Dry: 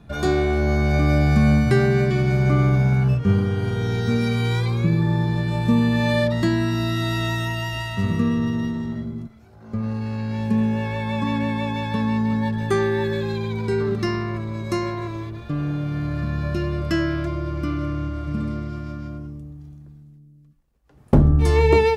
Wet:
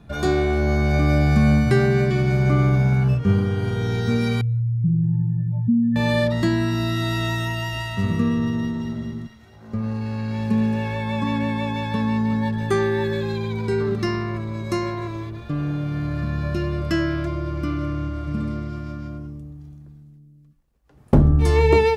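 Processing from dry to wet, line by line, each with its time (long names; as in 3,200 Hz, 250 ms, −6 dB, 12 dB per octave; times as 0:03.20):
0:04.41–0:05.96: expanding power law on the bin magnitudes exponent 3.1
0:08.57–0:10.95: delay with a high-pass on its return 223 ms, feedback 59%, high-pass 1,600 Hz, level −5 dB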